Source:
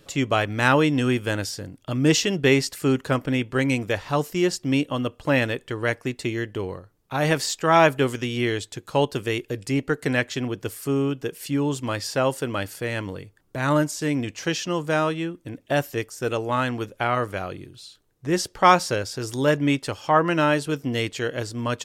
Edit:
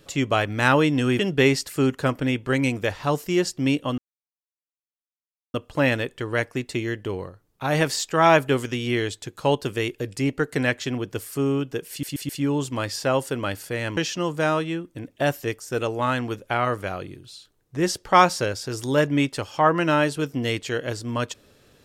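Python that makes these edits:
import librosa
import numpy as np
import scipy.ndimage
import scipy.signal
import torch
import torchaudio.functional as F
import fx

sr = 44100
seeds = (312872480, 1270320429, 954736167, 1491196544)

y = fx.edit(x, sr, fx.cut(start_s=1.19, length_s=1.06),
    fx.insert_silence(at_s=5.04, length_s=1.56),
    fx.stutter(start_s=11.4, slice_s=0.13, count=4),
    fx.cut(start_s=13.08, length_s=1.39), tone=tone)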